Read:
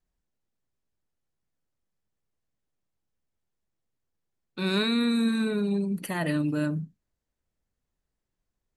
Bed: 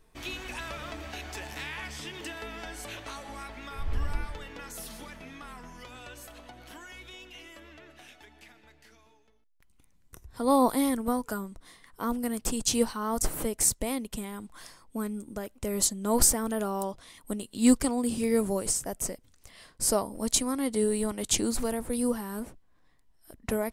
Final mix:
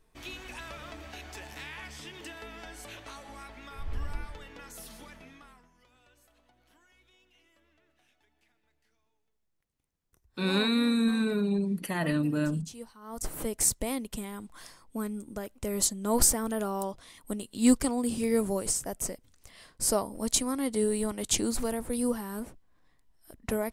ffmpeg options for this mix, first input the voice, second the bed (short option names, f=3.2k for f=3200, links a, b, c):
-filter_complex "[0:a]adelay=5800,volume=-1dB[a];[1:a]volume=13dB,afade=t=out:st=5.17:d=0.52:silence=0.199526,afade=t=in:st=13.01:d=0.54:silence=0.133352[b];[a][b]amix=inputs=2:normalize=0"